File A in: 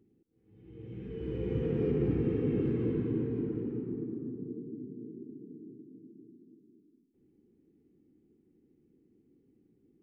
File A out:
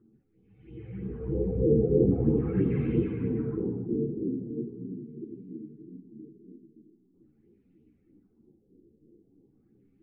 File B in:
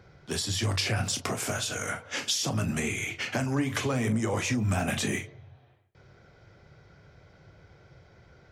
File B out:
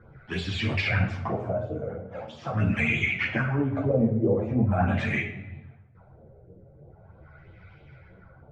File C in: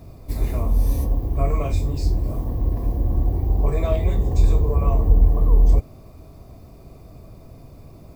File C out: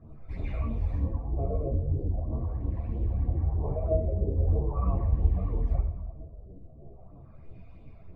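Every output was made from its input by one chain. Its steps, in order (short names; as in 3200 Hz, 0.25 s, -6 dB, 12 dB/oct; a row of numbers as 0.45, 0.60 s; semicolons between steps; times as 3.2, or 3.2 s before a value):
phaser stages 12, 3.1 Hz, lowest notch 290–2000 Hz; LFO low-pass sine 0.42 Hz 460–2600 Hz; shoebox room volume 340 m³, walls mixed, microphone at 0.66 m; ensemble effect; normalise peaks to -12 dBFS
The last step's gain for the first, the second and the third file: +7.0, +5.5, -5.5 dB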